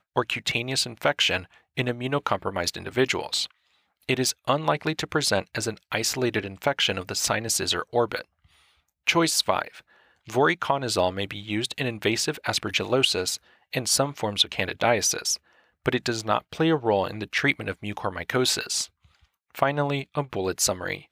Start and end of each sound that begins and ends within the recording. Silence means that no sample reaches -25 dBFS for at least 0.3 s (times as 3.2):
1.78–3.44
4.09–8.21
9.07–9.68
10.3–13.35
13.73–15.35
15.86–18.84